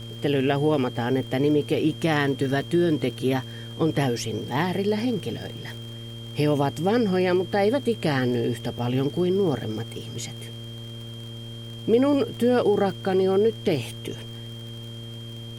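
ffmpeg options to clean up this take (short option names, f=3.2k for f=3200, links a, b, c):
-af "adeclick=t=4,bandreject=f=115.3:t=h:w=4,bandreject=f=230.6:t=h:w=4,bandreject=f=345.9:t=h:w=4,bandreject=f=461.2:t=h:w=4,bandreject=f=576.5:t=h:w=4,bandreject=f=3.2k:w=30,agate=range=-21dB:threshold=-29dB"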